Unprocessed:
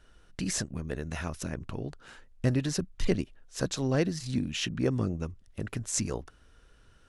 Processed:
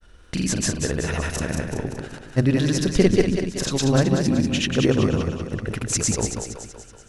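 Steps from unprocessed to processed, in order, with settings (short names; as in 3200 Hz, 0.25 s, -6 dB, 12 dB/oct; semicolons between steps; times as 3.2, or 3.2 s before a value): grains, pitch spread up and down by 0 st; split-band echo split 390 Hz, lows 0.138 s, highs 0.189 s, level -5 dB; gain +9 dB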